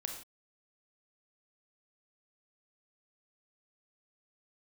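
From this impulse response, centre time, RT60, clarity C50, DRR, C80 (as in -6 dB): 24 ms, no single decay rate, 6.0 dB, 3.0 dB, 9.0 dB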